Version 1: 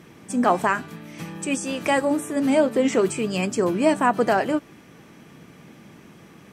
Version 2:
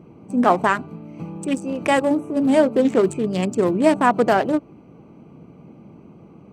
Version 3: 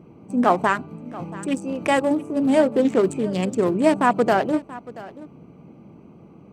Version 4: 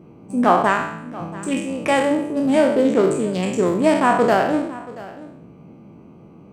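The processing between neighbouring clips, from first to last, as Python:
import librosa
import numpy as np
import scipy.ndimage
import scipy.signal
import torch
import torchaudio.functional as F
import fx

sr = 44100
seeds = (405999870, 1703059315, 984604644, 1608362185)

y1 = fx.wiener(x, sr, points=25)
y1 = y1 * librosa.db_to_amplitude(3.5)
y2 = y1 + 10.0 ** (-18.5 / 20.0) * np.pad(y1, (int(681 * sr / 1000.0), 0))[:len(y1)]
y2 = y2 * librosa.db_to_amplitude(-1.5)
y3 = fx.spec_trails(y2, sr, decay_s=0.73)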